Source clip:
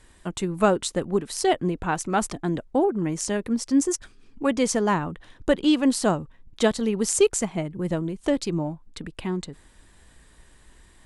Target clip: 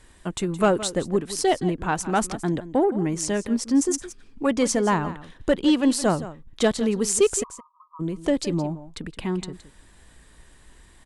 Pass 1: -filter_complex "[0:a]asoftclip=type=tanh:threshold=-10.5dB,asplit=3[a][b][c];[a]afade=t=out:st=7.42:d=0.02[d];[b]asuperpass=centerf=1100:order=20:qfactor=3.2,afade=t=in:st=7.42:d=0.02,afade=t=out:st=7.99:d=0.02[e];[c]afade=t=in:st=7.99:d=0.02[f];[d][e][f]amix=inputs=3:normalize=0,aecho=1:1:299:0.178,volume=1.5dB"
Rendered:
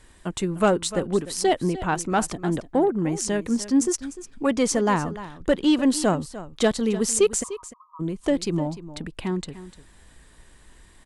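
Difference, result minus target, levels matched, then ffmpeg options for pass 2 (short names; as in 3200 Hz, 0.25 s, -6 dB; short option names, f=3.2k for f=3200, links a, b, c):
echo 0.131 s late
-filter_complex "[0:a]asoftclip=type=tanh:threshold=-10.5dB,asplit=3[a][b][c];[a]afade=t=out:st=7.42:d=0.02[d];[b]asuperpass=centerf=1100:order=20:qfactor=3.2,afade=t=in:st=7.42:d=0.02,afade=t=out:st=7.99:d=0.02[e];[c]afade=t=in:st=7.99:d=0.02[f];[d][e][f]amix=inputs=3:normalize=0,aecho=1:1:168:0.178,volume=1.5dB"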